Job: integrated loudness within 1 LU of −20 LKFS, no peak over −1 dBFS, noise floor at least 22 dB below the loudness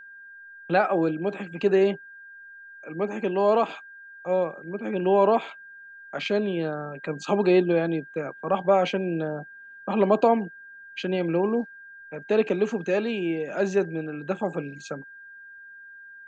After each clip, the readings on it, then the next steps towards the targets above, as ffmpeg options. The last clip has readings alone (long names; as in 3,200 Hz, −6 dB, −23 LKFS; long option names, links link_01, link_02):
interfering tone 1,600 Hz; level of the tone −43 dBFS; integrated loudness −25.0 LKFS; sample peak −7.5 dBFS; target loudness −20.0 LKFS
→ -af "bandreject=frequency=1600:width=30"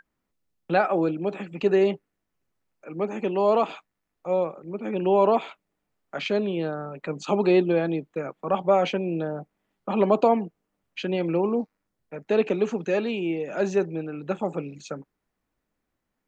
interfering tone none found; integrated loudness −25.0 LKFS; sample peak −7.5 dBFS; target loudness −20.0 LKFS
→ -af "volume=5dB"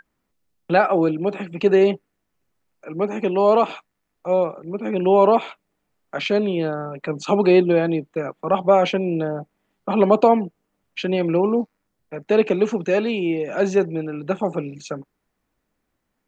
integrated loudness −20.0 LKFS; sample peak −2.5 dBFS; background noise floor −76 dBFS